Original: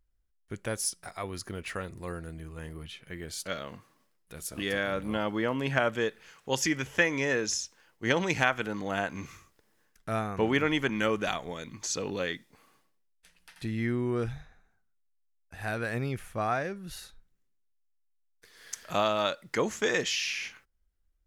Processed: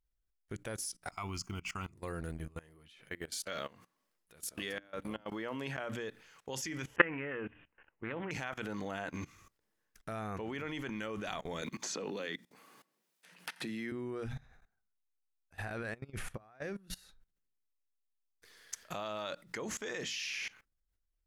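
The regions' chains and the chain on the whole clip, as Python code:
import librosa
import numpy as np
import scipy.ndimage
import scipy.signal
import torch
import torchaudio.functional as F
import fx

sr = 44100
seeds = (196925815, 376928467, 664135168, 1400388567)

y = fx.chain(x, sr, fx.high_shelf(hz=2300.0, db=4.5),
    fx.fixed_phaser(hz=2600.0, stages=8), at=(1.11, 1.93))
y = fx.chain(y, sr, fx.low_shelf(hz=210.0, db=-8.0),
    fx.gate_flip(shuts_db=-17.0, range_db=-24), at=(2.58, 5.78))
y = fx.chain(y, sr, fx.steep_lowpass(hz=2900.0, slope=96),
    fx.doppler_dist(depth_ms=0.23), at=(6.96, 8.31))
y = fx.chain(y, sr, fx.highpass(hz=160.0, slope=24),
    fx.band_squash(depth_pct=70), at=(11.62, 13.92))
y = fx.chain(y, sr, fx.lowpass(hz=12000.0, slope=24),
    fx.high_shelf(hz=4000.0, db=-4.5),
    fx.over_compress(threshold_db=-41.0, ratio=-1.0), at=(15.59, 16.62))
y = fx.hum_notches(y, sr, base_hz=60, count=5)
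y = fx.level_steps(y, sr, step_db=21)
y = y * 10.0 ** (2.5 / 20.0)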